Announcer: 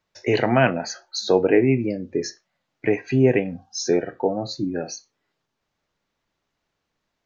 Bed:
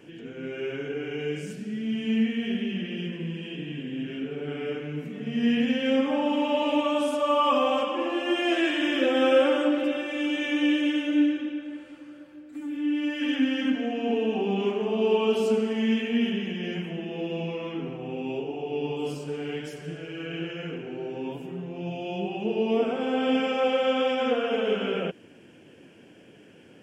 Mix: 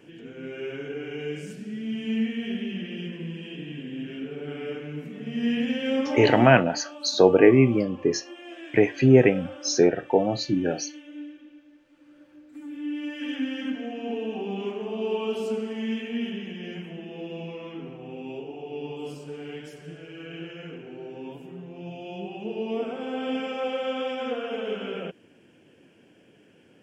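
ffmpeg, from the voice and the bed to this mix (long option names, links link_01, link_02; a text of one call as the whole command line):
ffmpeg -i stem1.wav -i stem2.wav -filter_complex "[0:a]adelay=5900,volume=1.5dB[link_01];[1:a]volume=10.5dB,afade=type=out:start_time=6.39:duration=0.24:silence=0.16788,afade=type=in:start_time=11.86:duration=0.48:silence=0.237137[link_02];[link_01][link_02]amix=inputs=2:normalize=0" out.wav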